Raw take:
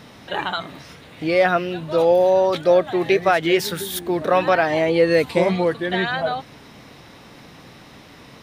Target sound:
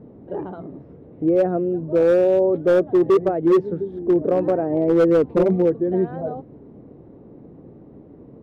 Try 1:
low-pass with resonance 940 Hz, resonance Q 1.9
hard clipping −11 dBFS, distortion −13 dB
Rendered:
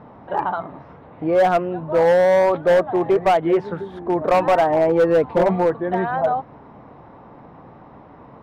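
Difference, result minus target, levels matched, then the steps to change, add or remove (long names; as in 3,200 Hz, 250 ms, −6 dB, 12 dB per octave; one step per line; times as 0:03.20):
1,000 Hz band +11.0 dB
change: low-pass with resonance 400 Hz, resonance Q 1.9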